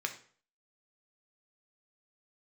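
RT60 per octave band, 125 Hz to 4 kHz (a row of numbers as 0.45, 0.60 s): 0.50, 0.45, 0.50, 0.45, 0.45, 0.40 s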